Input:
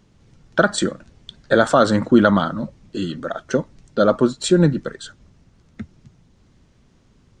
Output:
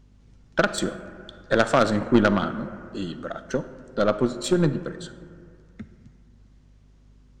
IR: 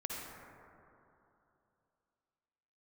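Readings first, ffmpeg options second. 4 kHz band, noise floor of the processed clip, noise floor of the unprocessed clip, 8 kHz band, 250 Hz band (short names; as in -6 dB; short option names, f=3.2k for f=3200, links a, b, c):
-5.0 dB, -55 dBFS, -57 dBFS, -6.0 dB, -5.5 dB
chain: -filter_complex "[0:a]aeval=exprs='val(0)+0.00447*(sin(2*PI*50*n/s)+sin(2*PI*2*50*n/s)/2+sin(2*PI*3*50*n/s)/3+sin(2*PI*4*50*n/s)/4+sin(2*PI*5*50*n/s)/5)':c=same,aeval=exprs='0.841*(cos(1*acos(clip(val(0)/0.841,-1,1)))-cos(1*PI/2))+0.237*(cos(3*acos(clip(val(0)/0.841,-1,1)))-cos(3*PI/2))+0.075*(cos(5*acos(clip(val(0)/0.841,-1,1)))-cos(5*PI/2))+0.0237*(cos(6*acos(clip(val(0)/0.841,-1,1)))-cos(6*PI/2))+0.00668*(cos(7*acos(clip(val(0)/0.841,-1,1)))-cos(7*PI/2))':c=same,asplit=2[a][b];[1:a]atrim=start_sample=2205,asetrate=57330,aresample=44100[c];[b][c]afir=irnorm=-1:irlink=0,volume=-8.5dB[d];[a][d]amix=inputs=2:normalize=0,volume=-2.5dB"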